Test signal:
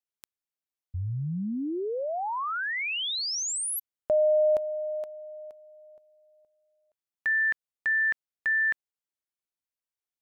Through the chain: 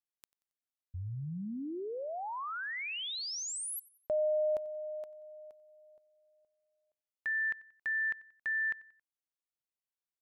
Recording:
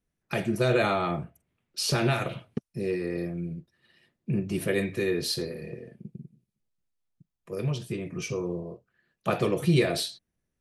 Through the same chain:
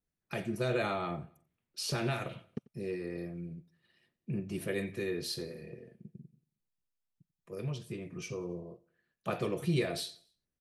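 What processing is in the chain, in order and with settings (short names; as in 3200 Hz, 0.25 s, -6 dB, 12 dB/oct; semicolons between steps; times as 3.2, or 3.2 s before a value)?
feedback echo 91 ms, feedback 45%, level -22.5 dB; gain -8 dB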